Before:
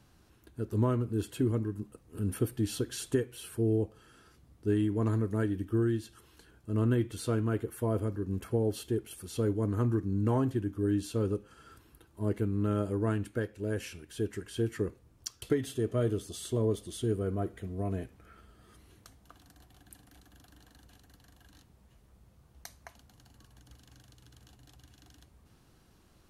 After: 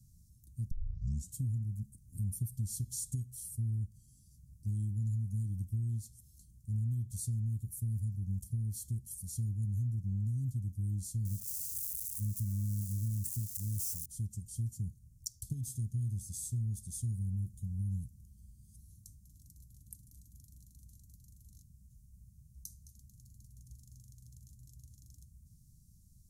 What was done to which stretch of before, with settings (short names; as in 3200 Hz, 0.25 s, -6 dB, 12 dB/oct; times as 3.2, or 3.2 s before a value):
0.71 tape start 0.64 s
11.25–14.06 switching spikes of -30.5 dBFS
whole clip: inverse Chebyshev band-stop 570–2000 Hz, stop band 70 dB; dynamic EQ 300 Hz, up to -7 dB, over -58 dBFS, Q 2.3; compressor, threshold -35 dBFS; gain +3.5 dB